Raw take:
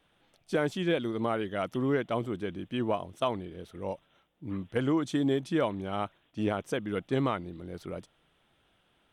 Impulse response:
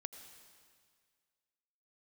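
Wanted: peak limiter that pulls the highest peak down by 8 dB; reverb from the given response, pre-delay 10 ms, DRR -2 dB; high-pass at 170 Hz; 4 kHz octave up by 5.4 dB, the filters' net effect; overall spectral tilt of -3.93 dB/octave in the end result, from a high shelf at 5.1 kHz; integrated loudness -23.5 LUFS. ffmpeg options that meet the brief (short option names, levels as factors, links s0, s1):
-filter_complex "[0:a]highpass=170,equalizer=f=4000:t=o:g=4.5,highshelf=f=5100:g=7.5,alimiter=limit=0.0944:level=0:latency=1,asplit=2[s0][s1];[1:a]atrim=start_sample=2205,adelay=10[s2];[s1][s2]afir=irnorm=-1:irlink=0,volume=1.88[s3];[s0][s3]amix=inputs=2:normalize=0,volume=2"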